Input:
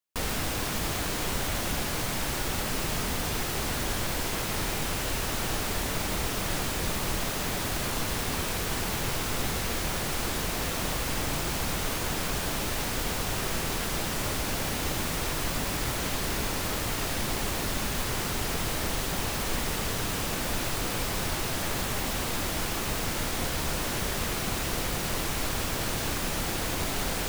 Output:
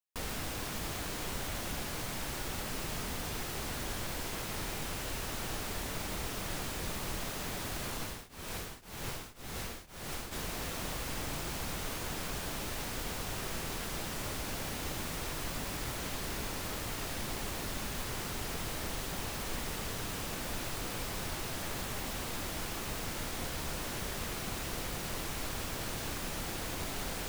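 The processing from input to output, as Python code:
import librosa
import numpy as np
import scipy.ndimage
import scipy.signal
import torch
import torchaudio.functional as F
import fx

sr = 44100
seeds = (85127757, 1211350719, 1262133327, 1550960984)

y = fx.tremolo_shape(x, sr, shape='triangle', hz=1.9, depth_pct=95, at=(7.96, 10.31), fade=0.02)
y = y * 10.0 ** (-8.0 / 20.0)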